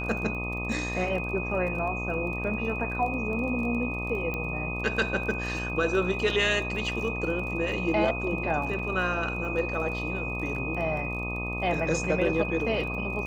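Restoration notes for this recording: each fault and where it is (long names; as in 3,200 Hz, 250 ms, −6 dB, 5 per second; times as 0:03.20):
mains buzz 60 Hz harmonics 21 −34 dBFS
surface crackle 24 per second −36 dBFS
whistle 2,500 Hz −33 dBFS
0:04.34: click −19 dBFS
0:08.79: drop-out 3.3 ms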